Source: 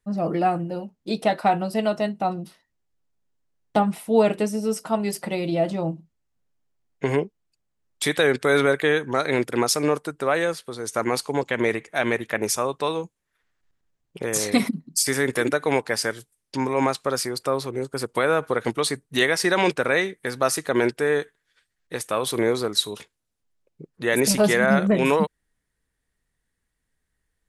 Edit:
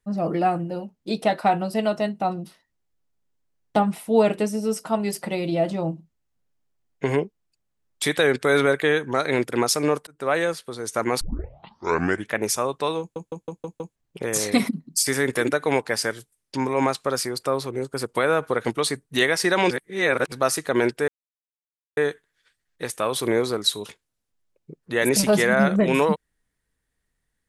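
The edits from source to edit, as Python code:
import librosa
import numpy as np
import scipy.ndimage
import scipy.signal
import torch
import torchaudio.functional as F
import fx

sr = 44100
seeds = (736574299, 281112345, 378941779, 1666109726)

y = fx.edit(x, sr, fx.fade_in_span(start_s=10.07, length_s=0.25),
    fx.tape_start(start_s=11.21, length_s=1.11),
    fx.stutter_over(start_s=13.0, slice_s=0.16, count=6),
    fx.reverse_span(start_s=19.71, length_s=0.61),
    fx.insert_silence(at_s=21.08, length_s=0.89), tone=tone)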